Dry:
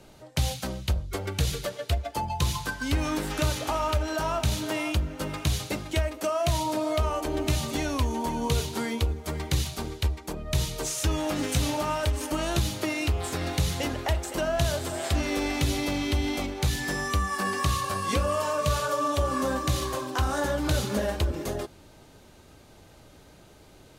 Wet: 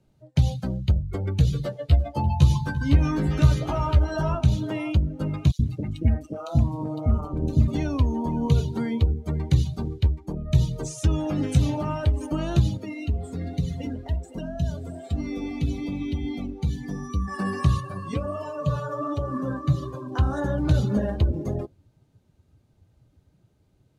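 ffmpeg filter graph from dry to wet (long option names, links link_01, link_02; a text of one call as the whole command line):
ffmpeg -i in.wav -filter_complex "[0:a]asettb=1/sr,asplit=3[link_01][link_02][link_03];[link_01]atrim=end=1.544[link_04];[link_02]atrim=start=1.54:end=4.35,asetpts=PTS-STARTPTS,afade=type=in:duration=0.004:curve=qsin,afade=type=out:start_time=2.806:duration=0.004:curve=qsin,asplit=2[link_05][link_06];[link_06]adelay=14,volume=-3dB[link_07];[link_05][link_07]amix=inputs=2:normalize=0,atrim=end_sample=123921,aecho=1:1:345:0.237,atrim=end_sample=123921[link_08];[link_03]atrim=start=4.346[link_09];[link_04][link_08]acrossfade=duration=0.004:curve1=hsin:curve2=qsin[link_10];[link_10][link_09]acrossfade=duration=0.004:curve1=qsin:curve2=hsin,asettb=1/sr,asplit=3[link_11][link_12][link_13];[link_11]atrim=end=5.514[link_14];[link_12]atrim=start=5.51:end=7.68,asetpts=PTS-STARTPTS,afade=type=in:duration=0.004:curve=qsin,afade=type=out:start_time=2.166:duration=0.004:curve=qsin,lowshelf=frequency=110:gain=8,tremolo=f=160:d=0.75,acrossover=split=670|2600[link_15][link_16][link_17];[link_15]adelay=80[link_18];[link_16]adelay=120[link_19];[link_18][link_19][link_17]amix=inputs=3:normalize=0,atrim=end_sample=95697[link_20];[link_13]atrim=start=7.676[link_21];[link_14][link_20]acrossfade=duration=0.004:curve1=hsin:curve2=qsin[link_22];[link_22][link_21]acrossfade=duration=0.004:curve1=qsin:curve2=hsin,asettb=1/sr,asplit=3[link_23][link_24][link_25];[link_23]atrim=end=12.774[link_26];[link_24]atrim=start=12.77:end=17.28,asetpts=PTS-STARTPTS,afade=type=in:duration=0.004:curve=qsin,afade=type=out:start_time=4.506:duration=0.004:curve=qsin,aecho=1:1:4.3:0.51,atrim=end_sample=198891,acrossover=split=410|3000[link_27][link_28][link_29];[link_28]acompressor=threshold=-33dB:ratio=3:attack=3.2:release=140:knee=2.83:detection=peak[link_30];[link_27][link_30][link_29]amix=inputs=3:normalize=0,flanger=delay=6.6:depth=6.9:regen=-69:speed=1.2:shape=triangular[link_31];[link_25]atrim=start=17.276[link_32];[link_26][link_31]acrossfade=duration=0.004:curve1=hsin:curve2=qsin[link_33];[link_33][link_32]acrossfade=duration=0.004:curve1=qsin:curve2=hsin,asettb=1/sr,asplit=3[link_34][link_35][link_36];[link_34]atrim=end=17.804[link_37];[link_35]atrim=start=17.8:end=20.12,asetpts=PTS-STARTPTS,afade=type=in:duration=0.004:curve=qsin,afade=type=out:start_time=2.316:duration=0.004:curve=qsin,aecho=1:1:6.9:0.44,atrim=end_sample=102312,flanger=delay=2:depth=7:regen=69:speed=1.4:shape=sinusoidal[link_38];[link_36]atrim=start=20.116[link_39];[link_37][link_38]acrossfade=duration=0.004:curve1=hsin:curve2=qsin[link_40];[link_40][link_39]acrossfade=duration=0.004:curve1=qsin:curve2=hsin,afftdn=noise_reduction=17:noise_floor=-36,equalizer=frequency=130:width_type=o:width=2.5:gain=14.5,volume=-4.5dB" out.wav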